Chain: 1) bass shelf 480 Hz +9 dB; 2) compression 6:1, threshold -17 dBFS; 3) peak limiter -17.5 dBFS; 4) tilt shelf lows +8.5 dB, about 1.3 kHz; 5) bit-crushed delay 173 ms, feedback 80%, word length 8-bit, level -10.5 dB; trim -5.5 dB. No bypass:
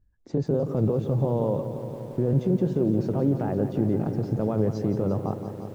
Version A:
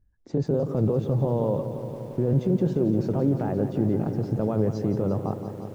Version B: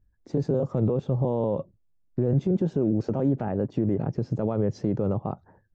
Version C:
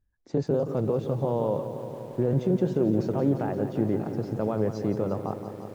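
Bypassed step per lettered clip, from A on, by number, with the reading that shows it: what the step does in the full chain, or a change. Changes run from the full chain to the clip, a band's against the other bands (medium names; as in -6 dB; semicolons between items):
2, mean gain reduction 2.5 dB; 5, crest factor change -2.0 dB; 1, 125 Hz band -4.0 dB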